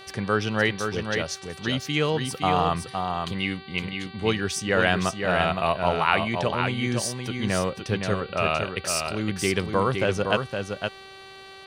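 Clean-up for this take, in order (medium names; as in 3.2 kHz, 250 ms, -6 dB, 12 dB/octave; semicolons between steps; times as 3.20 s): de-hum 386.5 Hz, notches 12; inverse comb 514 ms -5.5 dB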